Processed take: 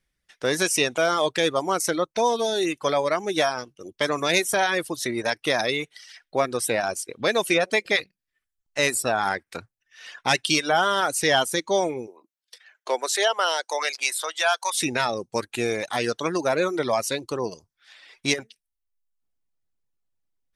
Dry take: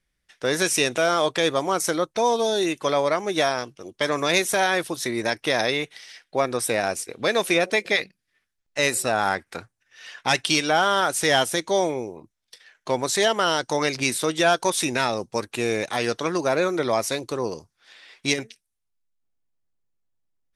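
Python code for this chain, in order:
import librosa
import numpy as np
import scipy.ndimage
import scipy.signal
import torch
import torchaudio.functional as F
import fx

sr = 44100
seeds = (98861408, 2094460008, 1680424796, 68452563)

y = fx.dereverb_blind(x, sr, rt60_s=0.65)
y = fx.highpass(y, sr, hz=fx.line((12.06, 280.0), (14.76, 790.0)), slope=24, at=(12.06, 14.76), fade=0.02)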